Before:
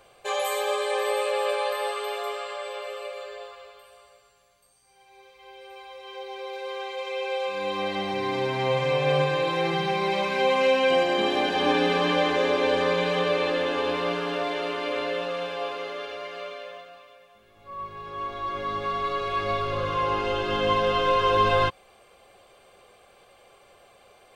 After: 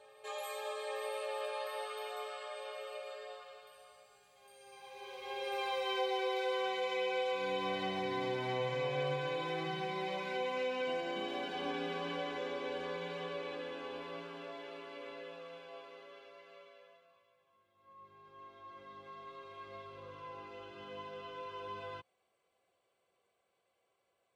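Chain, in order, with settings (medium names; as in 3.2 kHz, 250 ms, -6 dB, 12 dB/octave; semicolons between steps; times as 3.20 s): Doppler pass-by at 5.75 s, 11 m/s, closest 4.1 m; high-pass 90 Hz 12 dB/octave; reverse echo 861 ms -20 dB; in parallel at +3 dB: compression, threshold -43 dBFS, peak gain reduction 7.5 dB; on the sum: trim +1 dB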